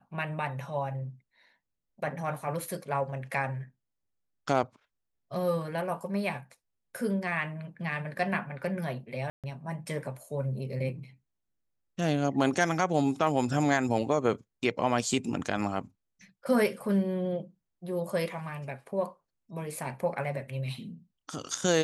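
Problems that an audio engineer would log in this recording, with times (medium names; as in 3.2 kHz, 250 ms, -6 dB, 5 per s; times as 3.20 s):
9.30–9.44 s: dropout 137 ms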